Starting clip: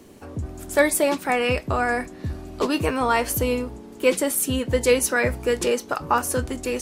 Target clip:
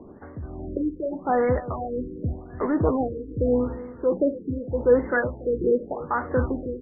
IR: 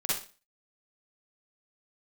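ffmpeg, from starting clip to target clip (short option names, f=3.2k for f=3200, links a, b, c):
-filter_complex "[0:a]asplit=2[a][b];[b]volume=26dB,asoftclip=hard,volume=-26dB,volume=-6dB[c];[a][c]amix=inputs=2:normalize=0,acrossover=split=1700[d][e];[d]aeval=exprs='val(0)*(1-0.7/2+0.7/2*cos(2*PI*1.4*n/s))':c=same[f];[e]aeval=exprs='val(0)*(1-0.7/2-0.7/2*cos(2*PI*1.4*n/s))':c=same[g];[f][g]amix=inputs=2:normalize=0,aecho=1:1:286|572|858:0.158|0.0586|0.0217,asplit=2[h][i];[1:a]atrim=start_sample=2205,atrim=end_sample=3528[j];[i][j]afir=irnorm=-1:irlink=0,volume=-21dB[k];[h][k]amix=inputs=2:normalize=0,afftfilt=real='re*lt(b*sr/1024,490*pow(2200/490,0.5+0.5*sin(2*PI*0.84*pts/sr)))':imag='im*lt(b*sr/1024,490*pow(2200/490,0.5+0.5*sin(2*PI*0.84*pts/sr)))':win_size=1024:overlap=0.75"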